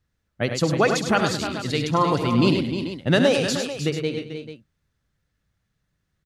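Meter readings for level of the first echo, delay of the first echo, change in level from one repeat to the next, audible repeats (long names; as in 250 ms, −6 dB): −11.5 dB, 68 ms, repeats not evenly spaced, 6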